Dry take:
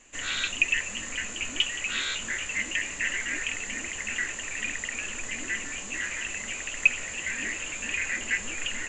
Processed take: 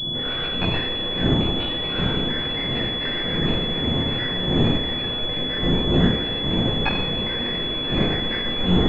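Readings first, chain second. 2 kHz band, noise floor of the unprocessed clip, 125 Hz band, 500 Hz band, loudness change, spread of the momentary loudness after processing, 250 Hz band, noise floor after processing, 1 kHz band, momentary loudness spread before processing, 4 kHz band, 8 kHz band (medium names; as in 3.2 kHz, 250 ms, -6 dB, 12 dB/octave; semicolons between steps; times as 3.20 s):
-3.0 dB, -38 dBFS, +26.5 dB, +20.0 dB, +7.0 dB, 4 LU, +22.0 dB, -26 dBFS, +12.5 dB, 8 LU, +12.5 dB, under -25 dB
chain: wind noise 270 Hz -32 dBFS; two-slope reverb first 0.59 s, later 4.4 s, from -18 dB, DRR -7.5 dB; class-D stage that switches slowly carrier 3.4 kHz; trim -1 dB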